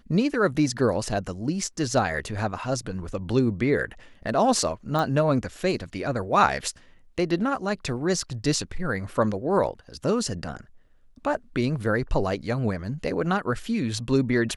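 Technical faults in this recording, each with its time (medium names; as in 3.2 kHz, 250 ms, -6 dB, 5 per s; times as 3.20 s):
4.99 s: pop -15 dBFS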